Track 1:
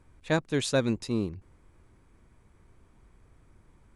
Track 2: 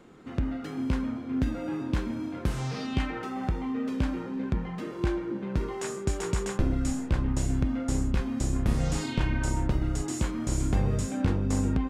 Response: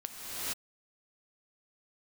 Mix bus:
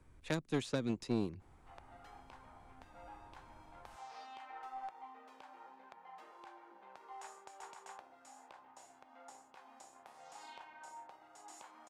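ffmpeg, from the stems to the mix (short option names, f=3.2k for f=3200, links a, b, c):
-filter_complex "[0:a]acrossover=split=160|320|2500|7700[a][b][c][d][e];[a]acompressor=threshold=-47dB:ratio=4[f];[b]acompressor=threshold=-33dB:ratio=4[g];[c]acompressor=threshold=-38dB:ratio=4[h];[d]acompressor=threshold=-47dB:ratio=4[i];[e]acompressor=threshold=-60dB:ratio=4[j];[f][g][h][i][j]amix=inputs=5:normalize=0,volume=2.5dB[k];[1:a]acompressor=threshold=-28dB:ratio=4,highpass=f=810:t=q:w=4.9,aeval=exprs='0.133*(cos(1*acos(clip(val(0)/0.133,-1,1)))-cos(1*PI/2))+0.000944*(cos(8*acos(clip(val(0)/0.133,-1,1)))-cos(8*PI/2))':c=same,adelay=1400,volume=-11dB[l];[k][l]amix=inputs=2:normalize=0,aeval=exprs='0.15*(cos(1*acos(clip(val(0)/0.15,-1,1)))-cos(1*PI/2))+0.0266*(cos(3*acos(clip(val(0)/0.15,-1,1)))-cos(3*PI/2))+0.0299*(cos(4*acos(clip(val(0)/0.15,-1,1)))-cos(4*PI/2))+0.0168*(cos(6*acos(clip(val(0)/0.15,-1,1)))-cos(6*PI/2))':c=same"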